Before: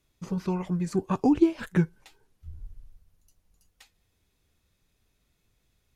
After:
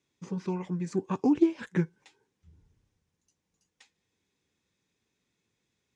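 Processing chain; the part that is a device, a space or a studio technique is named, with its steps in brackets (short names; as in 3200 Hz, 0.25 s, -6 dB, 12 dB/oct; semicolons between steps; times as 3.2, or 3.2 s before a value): full-range speaker at full volume (Doppler distortion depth 0.11 ms; speaker cabinet 170–7600 Hz, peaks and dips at 660 Hz -9 dB, 1300 Hz -6 dB, 2900 Hz -3 dB, 4400 Hz -5 dB); gain -1.5 dB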